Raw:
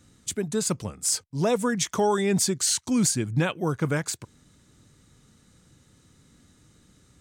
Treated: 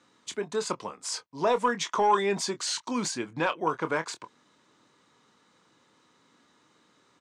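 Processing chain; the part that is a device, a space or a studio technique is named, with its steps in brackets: intercom (BPF 370–4400 Hz; bell 1000 Hz +10 dB 0.4 oct; soft clip -13 dBFS, distortion -22 dB; doubler 25 ms -11 dB)

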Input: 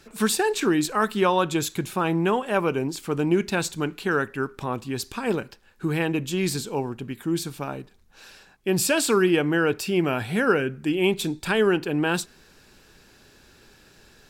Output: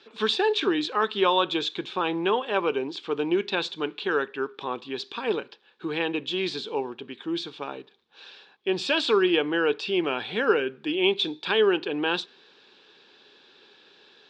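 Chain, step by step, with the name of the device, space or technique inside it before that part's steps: phone earpiece (speaker cabinet 400–4200 Hz, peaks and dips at 420 Hz +3 dB, 650 Hz -7 dB, 1400 Hz -4 dB, 2000 Hz -5 dB, 3500 Hz +9 dB); gain +1 dB

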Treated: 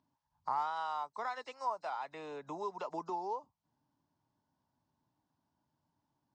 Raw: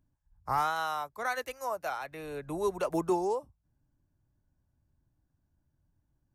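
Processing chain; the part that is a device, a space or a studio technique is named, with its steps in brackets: hearing aid with frequency lowering (nonlinear frequency compression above 3800 Hz 1.5:1; compressor 2.5:1, threshold -45 dBFS, peak gain reduction 14 dB; speaker cabinet 260–5600 Hz, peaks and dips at 350 Hz -6 dB, 530 Hz -5 dB, 940 Hz +9 dB, 1600 Hz -6 dB, 2400 Hz -5 dB); gain +4 dB

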